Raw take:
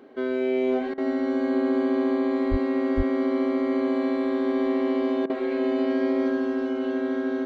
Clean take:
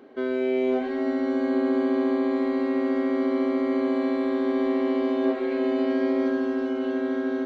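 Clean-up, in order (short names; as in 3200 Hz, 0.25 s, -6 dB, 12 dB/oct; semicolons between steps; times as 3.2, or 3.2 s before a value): 2.5–2.62 HPF 140 Hz 24 dB/oct; 2.96–3.08 HPF 140 Hz 24 dB/oct; interpolate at 0.94/5.26, 37 ms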